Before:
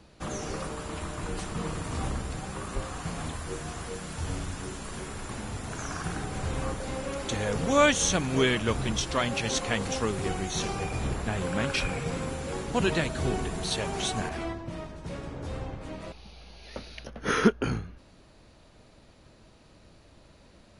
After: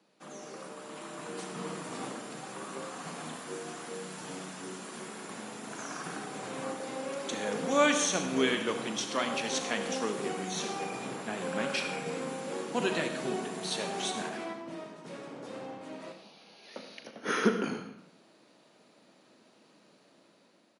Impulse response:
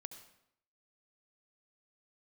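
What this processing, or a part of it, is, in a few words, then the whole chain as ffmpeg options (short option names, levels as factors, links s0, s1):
far laptop microphone: -filter_complex "[1:a]atrim=start_sample=2205[s0];[0:a][s0]afir=irnorm=-1:irlink=0,highpass=f=190:w=0.5412,highpass=f=190:w=1.3066,dynaudnorm=f=390:g=5:m=2.37,highpass=110,asplit=2[s1][s2];[s2]adelay=38,volume=0.237[s3];[s1][s3]amix=inputs=2:normalize=0,volume=0.501"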